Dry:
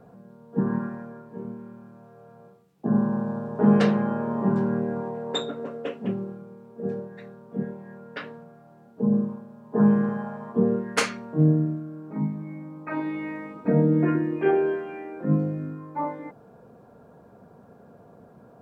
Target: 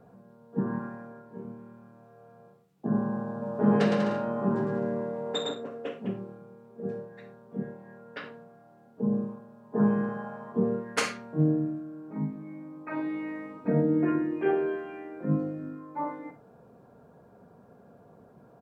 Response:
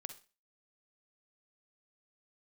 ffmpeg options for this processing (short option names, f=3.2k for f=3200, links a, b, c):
-filter_complex "[0:a]asplit=3[a][b][c];[a]afade=t=out:st=3.41:d=0.02[d];[b]aecho=1:1:110|192.5|254.4|300.8|335.6:0.631|0.398|0.251|0.158|0.1,afade=t=in:st=3.41:d=0.02,afade=t=out:st=5.53:d=0.02[e];[c]afade=t=in:st=5.53:d=0.02[f];[d][e][f]amix=inputs=3:normalize=0[g];[1:a]atrim=start_sample=2205,afade=t=out:st=0.15:d=0.01,atrim=end_sample=7056[h];[g][h]afir=irnorm=-1:irlink=0"